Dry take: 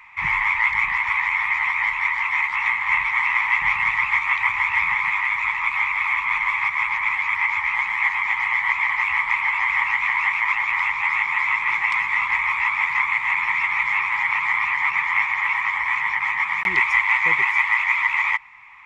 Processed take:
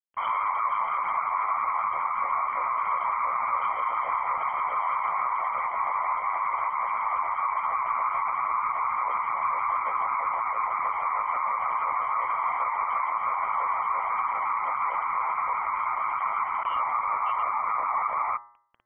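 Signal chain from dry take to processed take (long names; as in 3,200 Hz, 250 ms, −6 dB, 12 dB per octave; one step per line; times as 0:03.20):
bit reduction 6 bits
brickwall limiter −16 dBFS, peak gain reduction 10.5 dB
gate on every frequency bin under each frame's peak −30 dB strong
high-pass filter 71 Hz
parametric band 2,100 Hz +9 dB 0.38 octaves
voice inversion scrambler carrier 3,200 Hz
hum removal 119.2 Hz, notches 17
level −8.5 dB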